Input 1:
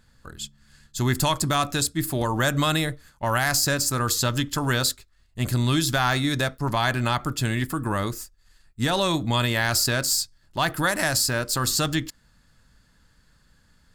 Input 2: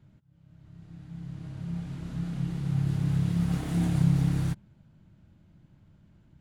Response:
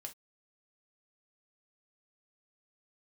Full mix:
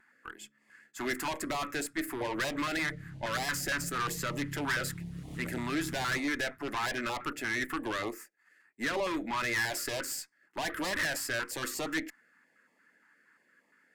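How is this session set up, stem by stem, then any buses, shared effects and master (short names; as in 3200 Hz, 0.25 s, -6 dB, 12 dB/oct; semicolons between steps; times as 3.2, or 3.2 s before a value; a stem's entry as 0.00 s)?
+1.0 dB, 0.00 s, no send, HPF 290 Hz 24 dB/oct; resonant high shelf 2800 Hz -11 dB, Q 3; vibrato 0.45 Hz 7.1 cents
-4.0 dB, 1.65 s, no send, compressor, threshold -32 dBFS, peak gain reduction 13.5 dB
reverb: off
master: tube stage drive 26 dB, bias 0.45; stepped notch 8.6 Hz 510–1500 Hz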